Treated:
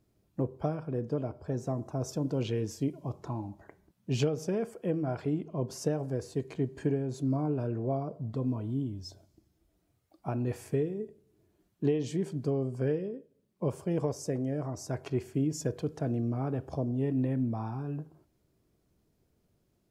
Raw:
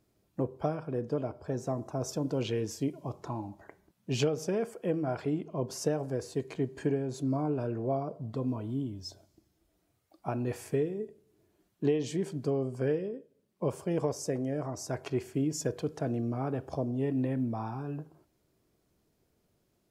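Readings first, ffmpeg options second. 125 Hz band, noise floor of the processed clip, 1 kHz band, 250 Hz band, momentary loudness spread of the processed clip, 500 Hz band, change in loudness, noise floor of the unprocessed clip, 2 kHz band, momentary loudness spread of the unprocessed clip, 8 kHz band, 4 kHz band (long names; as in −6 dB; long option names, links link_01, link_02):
+2.5 dB, −74 dBFS, −2.5 dB, +0.5 dB, 8 LU, −1.0 dB, +0.5 dB, −74 dBFS, −3.0 dB, 8 LU, −3.0 dB, −3.0 dB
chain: -af "lowshelf=frequency=270:gain=7,volume=-3dB"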